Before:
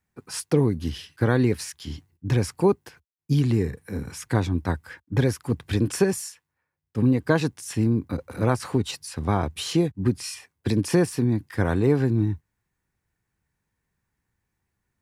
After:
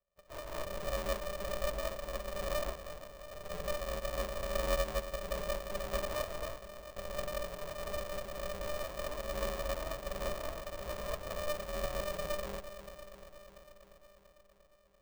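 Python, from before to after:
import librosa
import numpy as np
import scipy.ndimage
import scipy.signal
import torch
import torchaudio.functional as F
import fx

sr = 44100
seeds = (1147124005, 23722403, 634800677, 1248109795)

p1 = fx.bit_reversed(x, sr, seeds[0], block=256)
p2 = scipy.signal.sosfilt(scipy.signal.butter(4, 120.0, 'highpass', fs=sr, output='sos'), p1)
p3 = fx.over_compress(p2, sr, threshold_db=-28.0, ratio=-0.5)
p4 = p2 + (p3 * 10.0 ** (1.5 / 20.0))
p5 = fx.formant_cascade(p4, sr, vowel='u')
p6 = 10.0 ** (-33.0 / 20.0) * np.tanh(p5 / 10.0 ** (-33.0 / 20.0))
p7 = p6 + fx.echo_bbd(p6, sr, ms=344, stages=4096, feedback_pct=68, wet_db=-12.5, dry=0)
p8 = fx.rev_gated(p7, sr, seeds[1], gate_ms=270, shape='rising', drr_db=-7.0)
y = p8 * np.sign(np.sin(2.0 * np.pi * 300.0 * np.arange(len(p8)) / sr))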